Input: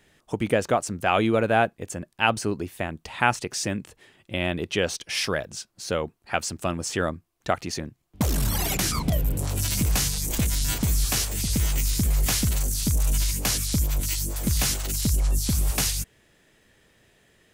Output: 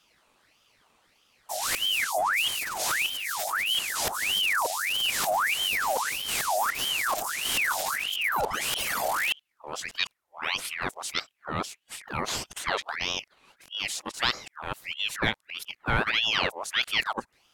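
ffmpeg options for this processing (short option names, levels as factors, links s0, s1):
-af "areverse,asoftclip=type=tanh:threshold=0.531,aeval=exprs='val(0)*sin(2*PI*1900*n/s+1900*0.65/1.6*sin(2*PI*1.6*n/s))':c=same,volume=0.841"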